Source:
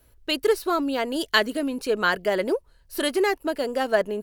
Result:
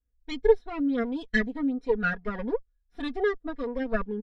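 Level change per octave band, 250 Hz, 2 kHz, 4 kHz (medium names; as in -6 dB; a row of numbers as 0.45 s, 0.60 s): -1.0 dB, -5.5 dB, -16.5 dB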